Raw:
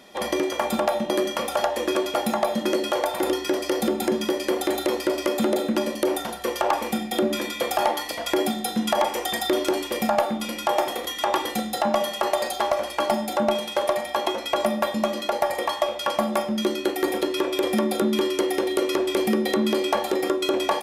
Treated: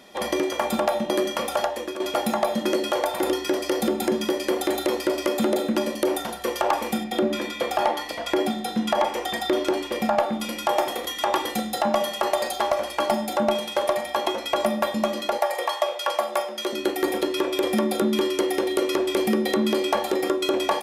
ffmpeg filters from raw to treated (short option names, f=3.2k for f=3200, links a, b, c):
-filter_complex "[0:a]asettb=1/sr,asplit=3[a][b][c];[a]atrim=end=7.044[d];[b]atrim=start=7.04:end=10.33,asetpts=PTS-STARTPTS,afade=t=in:d=0.004:c=qsin,afade=t=out:st=3.286:d=0.004:c=qsin,highshelf=f=6.6k:g=-10[e];[c]atrim=start=10.326[f];[d][e]acrossfade=d=0.004:c1=hsin:c2=qsin[g];[g][f]acrossfade=d=0.004:c1=qsin:c2=hsin,asettb=1/sr,asplit=3[h][i][j];[h]atrim=end=15.384[k];[i]atrim=start=15.38:end=16.73,asetpts=PTS-STARTPTS,afade=t=in:d=0.004:c=qsin,afade=t=out:st=1.346:d=0.004:c=qsin,highpass=f=410:w=0.5412,highpass=f=410:w=1.3066[l];[j]atrim=start=16.726[m];[k][l]acrossfade=d=0.004:c1=hsin:c2=qsin[n];[n][m]acrossfade=d=0.004:c1=qsin:c2=hsin,asplit=2[o][p];[o]atrim=end=2,asetpts=PTS-STARTPTS,afade=t=out:st=1.55:d=0.45:silence=0.251189[q];[p]atrim=start=2,asetpts=PTS-STARTPTS,afade=t=in:d=0.004:c=hsin:silence=0.251189[r];[q][r]concat=n=2:v=0:a=1"